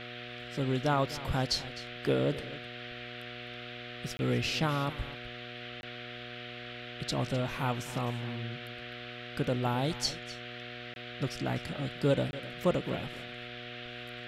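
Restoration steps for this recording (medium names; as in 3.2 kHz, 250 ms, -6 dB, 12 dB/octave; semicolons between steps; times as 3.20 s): de-hum 121 Hz, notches 6; interpolate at 4.17/5.81/10.94/12.31 s, 21 ms; noise print and reduce 30 dB; inverse comb 256 ms -16 dB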